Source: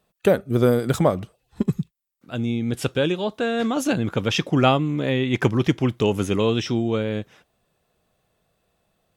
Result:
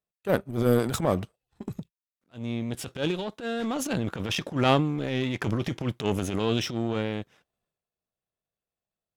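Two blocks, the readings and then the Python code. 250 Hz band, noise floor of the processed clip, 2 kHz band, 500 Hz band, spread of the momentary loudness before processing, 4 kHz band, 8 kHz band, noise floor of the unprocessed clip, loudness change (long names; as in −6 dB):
−6.0 dB, below −85 dBFS, −5.5 dB, −6.5 dB, 8 LU, −4.5 dB, −2.0 dB, −72 dBFS, −5.5 dB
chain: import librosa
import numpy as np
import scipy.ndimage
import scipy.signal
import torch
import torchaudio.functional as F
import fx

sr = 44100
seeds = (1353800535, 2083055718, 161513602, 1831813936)

y = fx.transient(x, sr, attack_db=-11, sustain_db=6)
y = fx.power_curve(y, sr, exponent=1.4)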